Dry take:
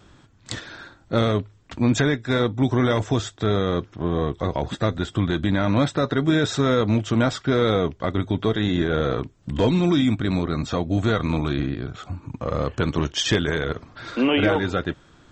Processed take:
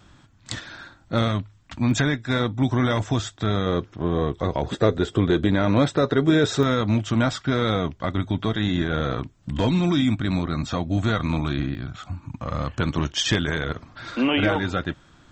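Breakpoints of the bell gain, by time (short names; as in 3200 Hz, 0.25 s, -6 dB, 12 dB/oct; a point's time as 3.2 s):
bell 430 Hz 0.62 oct
-7.5 dB
from 1.28 s -15 dB
from 1.91 s -7 dB
from 3.66 s +0.5 dB
from 4.68 s +10.5 dB
from 5.48 s +4.5 dB
from 6.63 s -7.5 dB
from 11.75 s -14.5 dB
from 12.76 s -6 dB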